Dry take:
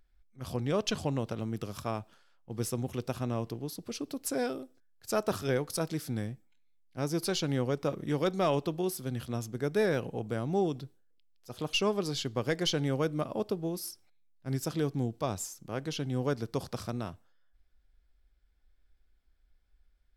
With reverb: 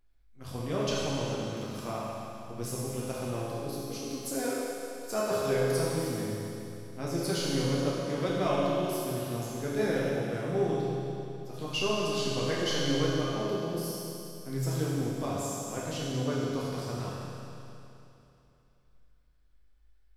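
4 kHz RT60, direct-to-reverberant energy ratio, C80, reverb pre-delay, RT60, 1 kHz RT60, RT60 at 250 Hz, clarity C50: 2.9 s, -7.5 dB, -1.5 dB, 7 ms, 2.9 s, 2.9 s, 2.9 s, -3.0 dB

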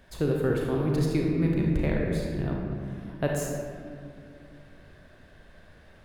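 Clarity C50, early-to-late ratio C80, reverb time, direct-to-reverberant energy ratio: 0.0 dB, 2.0 dB, 2.3 s, -1.5 dB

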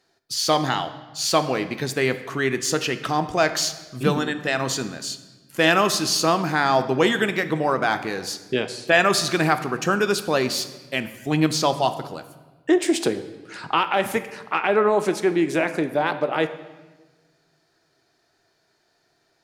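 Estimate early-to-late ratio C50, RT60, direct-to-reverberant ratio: 12.5 dB, 1.3 s, 10.0 dB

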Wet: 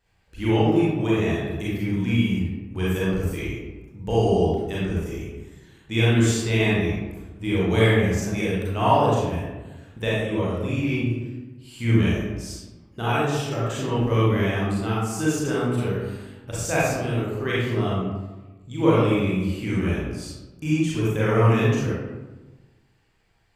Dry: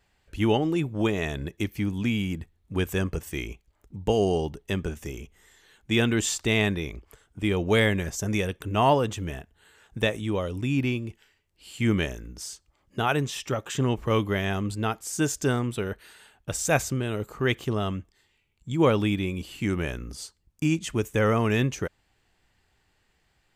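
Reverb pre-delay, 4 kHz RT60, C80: 32 ms, 0.65 s, 1.5 dB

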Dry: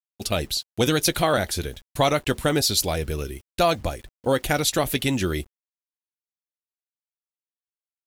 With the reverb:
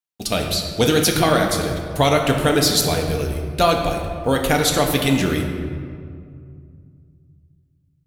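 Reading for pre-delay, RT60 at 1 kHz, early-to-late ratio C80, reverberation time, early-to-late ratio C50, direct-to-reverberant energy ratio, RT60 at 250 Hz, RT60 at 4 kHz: 4 ms, 2.1 s, 6.0 dB, 2.2 s, 4.5 dB, 1.5 dB, 3.0 s, 1.2 s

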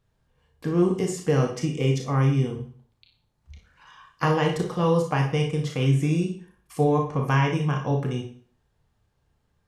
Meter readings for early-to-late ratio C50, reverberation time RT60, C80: 6.5 dB, 0.45 s, 12.0 dB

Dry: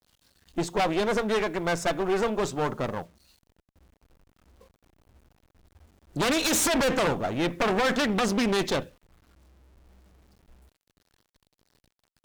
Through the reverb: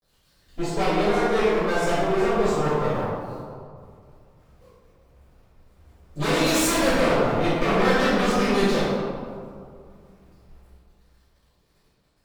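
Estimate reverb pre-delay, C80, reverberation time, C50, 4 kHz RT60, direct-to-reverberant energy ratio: 4 ms, -0.5 dB, 2.2 s, -3.0 dB, 1.0 s, -16.0 dB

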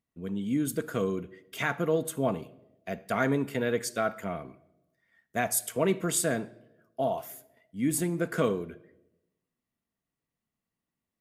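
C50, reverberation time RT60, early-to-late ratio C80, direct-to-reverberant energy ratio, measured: 18.0 dB, no single decay rate, 21.0 dB, 12.0 dB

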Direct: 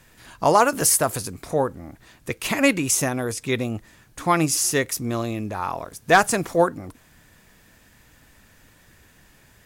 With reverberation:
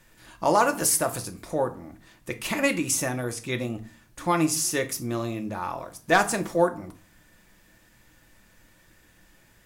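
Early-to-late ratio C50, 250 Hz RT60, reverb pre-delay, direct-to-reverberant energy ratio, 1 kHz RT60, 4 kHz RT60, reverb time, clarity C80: 15.5 dB, 0.50 s, 3 ms, 5.5 dB, 0.40 s, 0.30 s, 0.40 s, 21.0 dB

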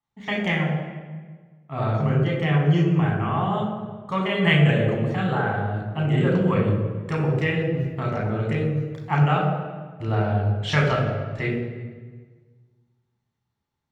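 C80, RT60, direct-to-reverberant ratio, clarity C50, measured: 5.0 dB, 1.5 s, -2.5 dB, 3.0 dB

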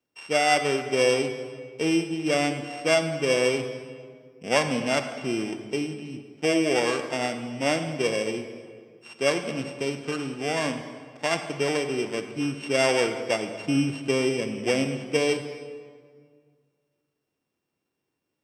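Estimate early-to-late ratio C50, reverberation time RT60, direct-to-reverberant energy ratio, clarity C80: 8.5 dB, 1.9 s, 7.5 dB, 9.5 dB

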